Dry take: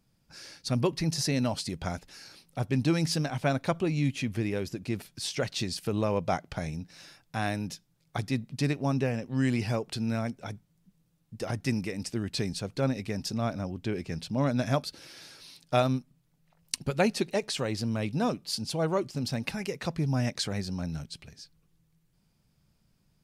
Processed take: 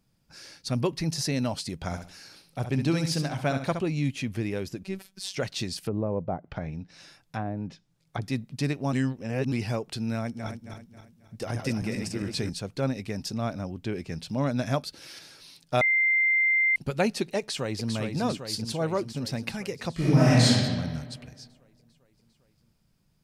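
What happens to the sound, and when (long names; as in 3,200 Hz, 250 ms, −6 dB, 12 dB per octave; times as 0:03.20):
0:01.84–0:03.82: repeating echo 67 ms, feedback 29%, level −8 dB
0:04.83–0:05.34: phases set to zero 192 Hz
0:05.85–0:08.22: treble cut that deepens with the level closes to 690 Hz, closed at −26 dBFS
0:08.93–0:09.52: reverse
0:10.20–0:12.50: feedback delay that plays each chunk backwards 135 ms, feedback 62%, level −4.5 dB
0:14.28–0:15.19: one half of a high-frequency compander encoder only
0:15.81–0:16.76: beep over 2,090 Hz −19.5 dBFS
0:17.39–0:17.92: delay throw 400 ms, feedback 70%, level −5.5 dB
0:19.93–0:20.46: thrown reverb, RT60 1.7 s, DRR −11 dB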